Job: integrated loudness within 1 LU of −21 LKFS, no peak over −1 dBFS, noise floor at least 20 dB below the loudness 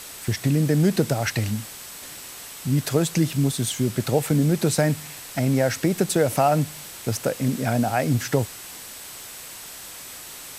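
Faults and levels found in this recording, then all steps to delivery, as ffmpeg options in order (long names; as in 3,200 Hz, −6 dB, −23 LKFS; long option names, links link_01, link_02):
interfering tone 8,000 Hz; level of the tone −46 dBFS; background noise floor −39 dBFS; target noise floor −43 dBFS; integrated loudness −23.0 LKFS; sample peak −6.0 dBFS; target loudness −21.0 LKFS
→ -af "bandreject=frequency=8000:width=30"
-af "afftdn=noise_reduction=6:noise_floor=-39"
-af "volume=2dB"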